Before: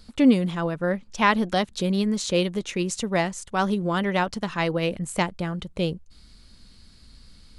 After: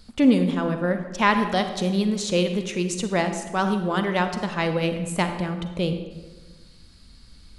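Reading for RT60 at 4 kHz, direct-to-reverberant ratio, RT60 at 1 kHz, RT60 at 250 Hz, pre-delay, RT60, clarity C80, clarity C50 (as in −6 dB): 0.80 s, 7.0 dB, 1.2 s, 1.6 s, 37 ms, 1.3 s, 9.5 dB, 7.5 dB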